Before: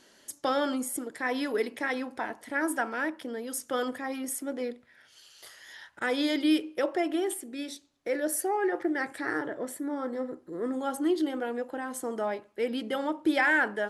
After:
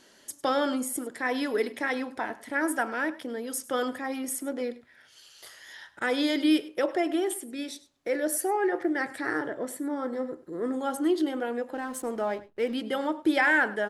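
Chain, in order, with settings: 11.74–12.74 s: hysteresis with a dead band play -46 dBFS; on a send: delay 101 ms -18.5 dB; on the sum: trim +1.5 dB

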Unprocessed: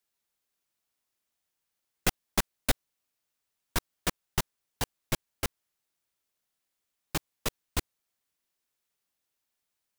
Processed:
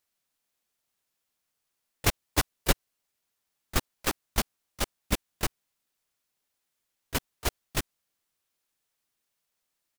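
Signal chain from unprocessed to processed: cycle switcher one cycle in 2, inverted; harmony voices -12 st -16 dB, -5 st -3 dB, +4 st -13 dB

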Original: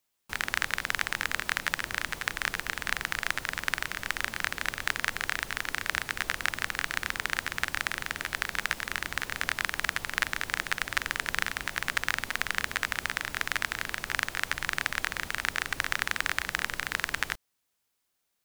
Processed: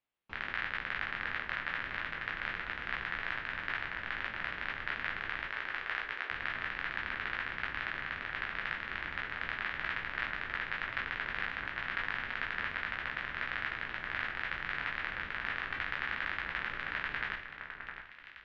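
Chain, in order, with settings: spectral sustain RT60 0.33 s; 5.47–6.31 s: high-pass 320 Hz 24 dB/octave; echo whose repeats swap between lows and highs 660 ms, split 2 kHz, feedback 53%, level -8 dB; saturation -11.5 dBFS, distortion -15 dB; low-pass 3.2 kHz 24 dB/octave; trim -7 dB

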